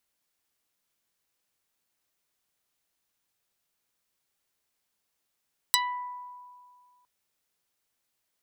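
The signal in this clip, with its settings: plucked string B5, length 1.31 s, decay 2.04 s, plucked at 0.42, dark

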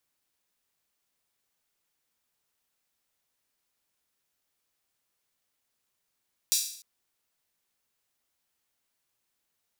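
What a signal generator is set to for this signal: open hi-hat length 0.30 s, high-pass 4.8 kHz, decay 0.59 s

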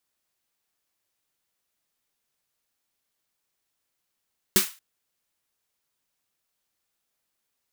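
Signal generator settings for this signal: snare drum length 0.23 s, tones 200 Hz, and 370 Hz, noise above 1.1 kHz, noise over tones 3.5 dB, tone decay 0.13 s, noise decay 0.31 s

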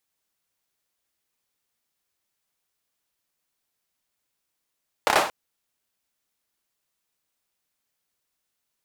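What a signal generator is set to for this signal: hand clap length 0.23 s, apart 29 ms, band 800 Hz, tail 0.43 s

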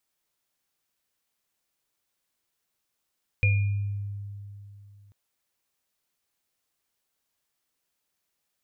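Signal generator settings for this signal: sine partials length 1.69 s, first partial 101 Hz, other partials 504/2420 Hz, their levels -17/-4 dB, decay 2.96 s, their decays 0.34/0.66 s, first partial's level -18 dB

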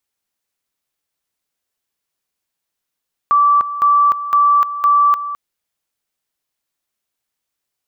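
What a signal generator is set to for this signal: two-level tone 1.16 kHz -8.5 dBFS, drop 12.5 dB, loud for 0.30 s, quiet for 0.21 s, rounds 4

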